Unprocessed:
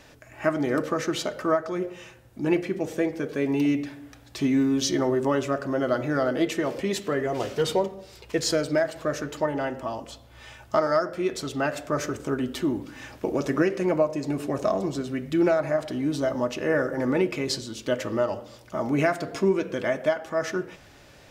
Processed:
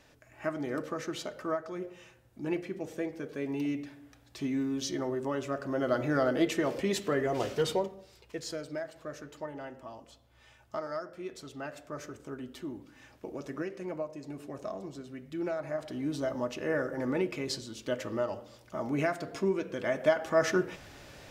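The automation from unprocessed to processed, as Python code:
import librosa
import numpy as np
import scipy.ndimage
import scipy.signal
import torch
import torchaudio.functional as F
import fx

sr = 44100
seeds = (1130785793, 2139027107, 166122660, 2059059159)

y = fx.gain(x, sr, db=fx.line((5.32, -9.5), (6.05, -3.0), (7.51, -3.0), (8.43, -14.0), (15.33, -14.0), (16.05, -7.0), (19.78, -7.0), (20.24, 1.0)))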